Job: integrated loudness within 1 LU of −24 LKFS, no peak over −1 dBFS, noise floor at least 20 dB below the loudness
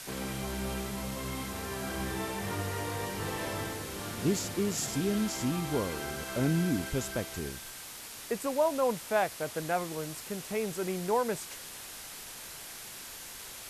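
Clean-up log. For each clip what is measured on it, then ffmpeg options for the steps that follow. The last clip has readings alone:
background noise floor −45 dBFS; target noise floor −54 dBFS; integrated loudness −33.5 LKFS; sample peak −15.5 dBFS; target loudness −24.0 LKFS
→ -af "afftdn=noise_reduction=9:noise_floor=-45"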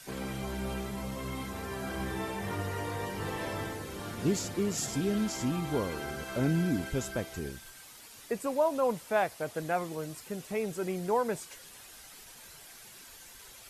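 background noise floor −51 dBFS; target noise floor −54 dBFS
→ -af "afftdn=noise_reduction=6:noise_floor=-51"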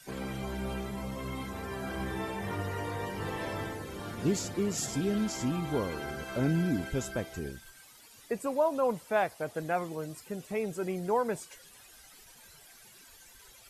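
background noise floor −55 dBFS; integrated loudness −33.5 LKFS; sample peak −15.5 dBFS; target loudness −24.0 LKFS
→ -af "volume=9.5dB"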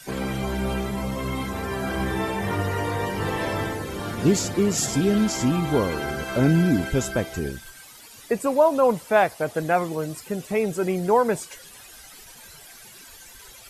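integrated loudness −24.0 LKFS; sample peak −6.0 dBFS; background noise floor −46 dBFS

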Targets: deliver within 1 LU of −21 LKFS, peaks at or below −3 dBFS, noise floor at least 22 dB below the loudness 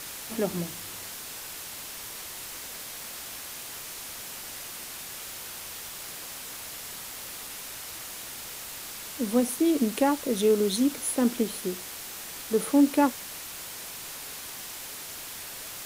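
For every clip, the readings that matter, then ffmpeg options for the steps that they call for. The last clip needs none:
background noise floor −40 dBFS; target noise floor −53 dBFS; integrated loudness −30.5 LKFS; sample peak −10.0 dBFS; target loudness −21.0 LKFS
→ -af "afftdn=noise_reduction=13:noise_floor=-40"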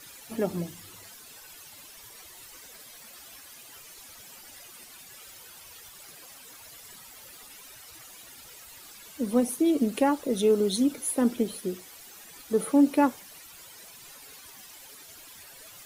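background noise floor −49 dBFS; integrated loudness −26.5 LKFS; sample peak −10.0 dBFS; target loudness −21.0 LKFS
→ -af "volume=5.5dB"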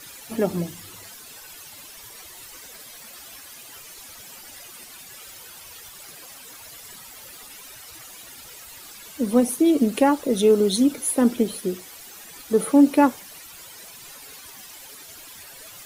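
integrated loudness −21.0 LKFS; sample peak −4.5 dBFS; background noise floor −43 dBFS

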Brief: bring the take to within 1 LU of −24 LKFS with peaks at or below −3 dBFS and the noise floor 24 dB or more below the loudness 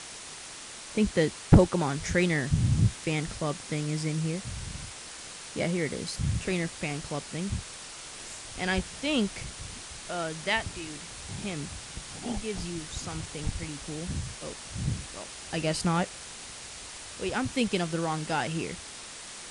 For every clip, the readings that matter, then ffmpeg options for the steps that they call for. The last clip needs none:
background noise floor −43 dBFS; target noise floor −55 dBFS; integrated loudness −31.0 LKFS; sample peak −8.5 dBFS; target loudness −24.0 LKFS
→ -af "afftdn=noise_reduction=12:noise_floor=-43"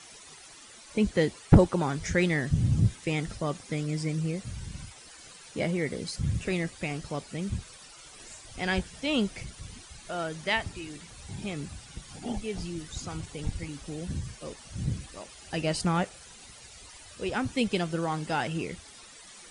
background noise floor −50 dBFS; target noise floor −55 dBFS
→ -af "afftdn=noise_reduction=6:noise_floor=-50"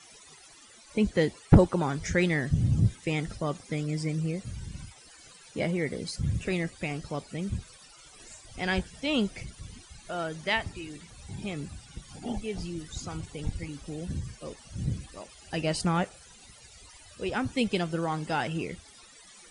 background noise floor −53 dBFS; target noise floor −55 dBFS
→ -af "afftdn=noise_reduction=6:noise_floor=-53"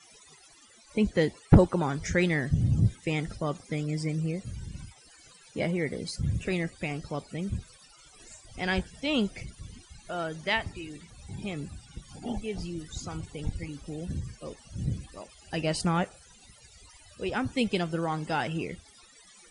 background noise floor −56 dBFS; integrated loudness −30.5 LKFS; sample peak −8.5 dBFS; target loudness −24.0 LKFS
→ -af "volume=6.5dB,alimiter=limit=-3dB:level=0:latency=1"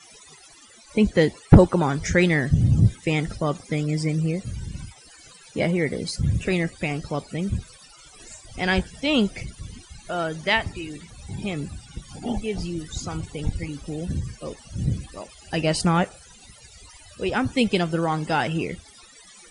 integrated loudness −24.0 LKFS; sample peak −3.0 dBFS; background noise floor −50 dBFS

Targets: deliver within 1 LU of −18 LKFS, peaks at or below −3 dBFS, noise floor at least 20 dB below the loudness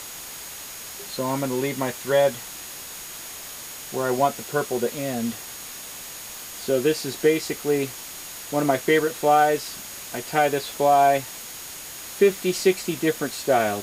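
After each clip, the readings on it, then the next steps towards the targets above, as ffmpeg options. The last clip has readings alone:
interfering tone 6,700 Hz; level of the tone −43 dBFS; background noise floor −38 dBFS; target noise floor −45 dBFS; integrated loudness −24.5 LKFS; sample peak −5.5 dBFS; target loudness −18.0 LKFS
→ -af "bandreject=frequency=6700:width=30"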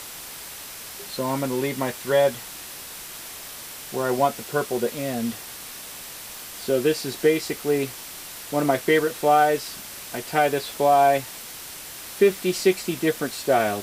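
interfering tone none found; background noise floor −38 dBFS; target noise floor −43 dBFS
→ -af "afftdn=noise_reduction=6:noise_floor=-38"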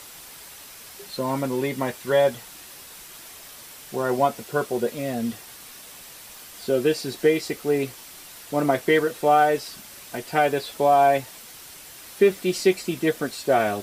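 background noise floor −44 dBFS; integrated loudness −23.0 LKFS; sample peak −6.0 dBFS; target loudness −18.0 LKFS
→ -af "volume=5dB,alimiter=limit=-3dB:level=0:latency=1"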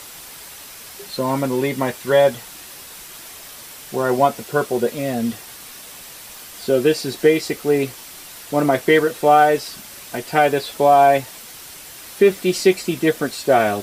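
integrated loudness −18.0 LKFS; sample peak −3.0 dBFS; background noise floor −39 dBFS

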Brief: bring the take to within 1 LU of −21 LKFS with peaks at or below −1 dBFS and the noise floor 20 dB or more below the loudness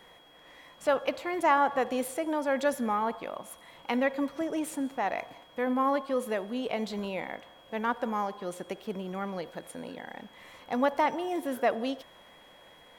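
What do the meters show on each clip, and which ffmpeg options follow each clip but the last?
interfering tone 3,300 Hz; level of the tone −58 dBFS; integrated loudness −31.0 LKFS; sample peak −11.5 dBFS; target loudness −21.0 LKFS
→ -af "bandreject=frequency=3300:width=30"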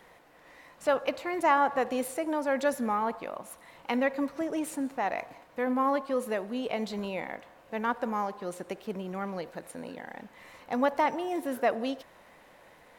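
interfering tone none found; integrated loudness −31.0 LKFS; sample peak −11.5 dBFS; target loudness −21.0 LKFS
→ -af "volume=10dB"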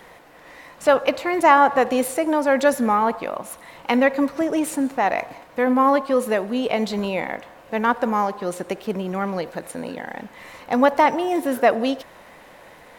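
integrated loudness −21.0 LKFS; sample peak −1.5 dBFS; background noise floor −47 dBFS

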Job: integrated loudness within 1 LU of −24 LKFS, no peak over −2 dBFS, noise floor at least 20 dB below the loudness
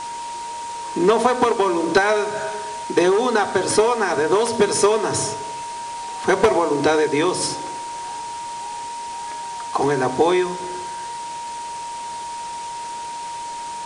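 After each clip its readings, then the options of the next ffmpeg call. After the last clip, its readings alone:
interfering tone 940 Hz; level of the tone −28 dBFS; background noise floor −31 dBFS; target noise floor −42 dBFS; integrated loudness −21.5 LKFS; sample peak −6.0 dBFS; target loudness −24.0 LKFS
→ -af "bandreject=frequency=940:width=30"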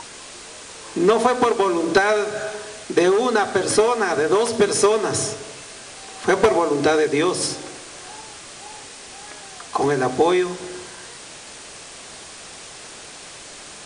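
interfering tone none found; background noise floor −39 dBFS; target noise floor −40 dBFS
→ -af "afftdn=noise_reduction=6:noise_floor=-39"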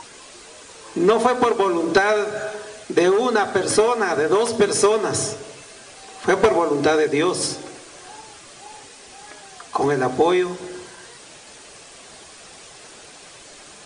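background noise floor −44 dBFS; integrated loudness −19.5 LKFS; sample peak −5.0 dBFS; target loudness −24.0 LKFS
→ -af "volume=-4.5dB"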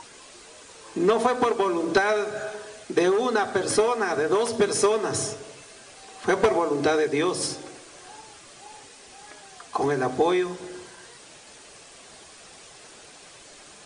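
integrated loudness −24.0 LKFS; sample peak −9.5 dBFS; background noise floor −48 dBFS

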